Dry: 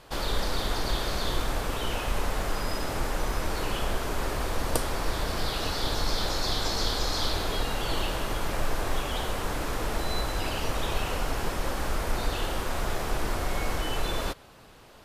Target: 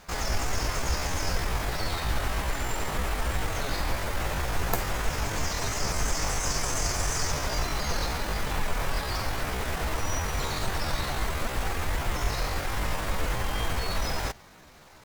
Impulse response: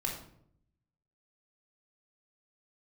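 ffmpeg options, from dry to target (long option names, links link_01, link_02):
-filter_complex "[0:a]asplit=2[link_01][link_02];[1:a]atrim=start_sample=2205,asetrate=74970,aresample=44100,highshelf=frequency=12000:gain=-5[link_03];[link_02][link_03]afir=irnorm=-1:irlink=0,volume=-24dB[link_04];[link_01][link_04]amix=inputs=2:normalize=0,asetrate=64194,aresample=44100,atempo=0.686977"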